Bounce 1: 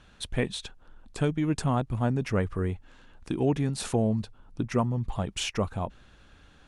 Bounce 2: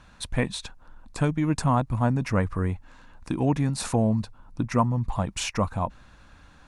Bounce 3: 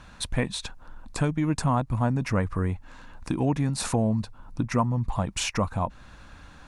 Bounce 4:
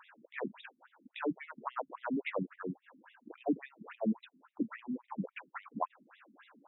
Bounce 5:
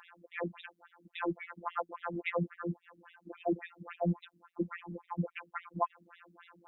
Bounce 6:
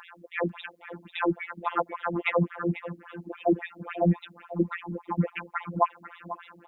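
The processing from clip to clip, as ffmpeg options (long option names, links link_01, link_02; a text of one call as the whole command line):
ffmpeg -i in.wav -af "equalizer=frequency=400:width_type=o:width=0.33:gain=-9,equalizer=frequency=1000:width_type=o:width=0.33:gain=6,equalizer=frequency=3150:width_type=o:width=0.33:gain=-7,volume=3.5dB" out.wav
ffmpeg -i in.wav -af "acompressor=threshold=-35dB:ratio=1.5,volume=4.5dB" out.wav
ffmpeg -i in.wav -af "afftfilt=real='re*between(b*sr/1024,240*pow(2800/240,0.5+0.5*sin(2*PI*3.6*pts/sr))/1.41,240*pow(2800/240,0.5+0.5*sin(2*PI*3.6*pts/sr))*1.41)':imag='im*between(b*sr/1024,240*pow(2800/240,0.5+0.5*sin(2*PI*3.6*pts/sr))/1.41,240*pow(2800/240,0.5+0.5*sin(2*PI*3.6*pts/sr))*1.41)':win_size=1024:overlap=0.75,volume=-1.5dB" out.wav
ffmpeg -i in.wav -af "afftfilt=real='hypot(re,im)*cos(PI*b)':imag='0':win_size=1024:overlap=0.75,volume=6dB" out.wav
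ffmpeg -i in.wav -af "aecho=1:1:493:0.211,volume=8.5dB" out.wav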